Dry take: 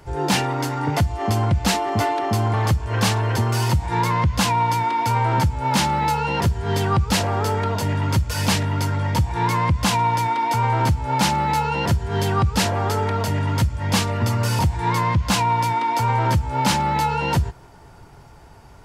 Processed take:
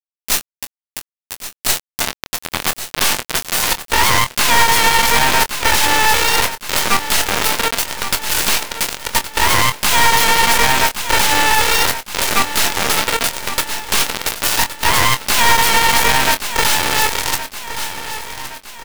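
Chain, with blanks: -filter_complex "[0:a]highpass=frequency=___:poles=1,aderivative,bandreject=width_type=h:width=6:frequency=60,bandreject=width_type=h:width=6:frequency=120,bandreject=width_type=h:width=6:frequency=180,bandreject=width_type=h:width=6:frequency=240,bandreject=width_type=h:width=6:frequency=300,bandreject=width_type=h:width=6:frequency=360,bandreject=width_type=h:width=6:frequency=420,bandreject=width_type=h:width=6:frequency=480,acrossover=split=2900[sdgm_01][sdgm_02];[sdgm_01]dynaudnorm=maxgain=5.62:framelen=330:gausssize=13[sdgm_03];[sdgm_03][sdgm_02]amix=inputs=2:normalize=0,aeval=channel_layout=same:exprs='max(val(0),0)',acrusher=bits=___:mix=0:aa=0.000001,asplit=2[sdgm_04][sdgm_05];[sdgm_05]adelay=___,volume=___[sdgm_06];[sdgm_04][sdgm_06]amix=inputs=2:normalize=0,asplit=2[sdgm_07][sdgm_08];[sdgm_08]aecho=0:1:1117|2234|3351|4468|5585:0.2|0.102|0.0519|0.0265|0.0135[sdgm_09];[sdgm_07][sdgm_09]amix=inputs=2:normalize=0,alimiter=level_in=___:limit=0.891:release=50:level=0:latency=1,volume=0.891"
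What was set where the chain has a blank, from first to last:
300, 3, 24, 0.335, 5.62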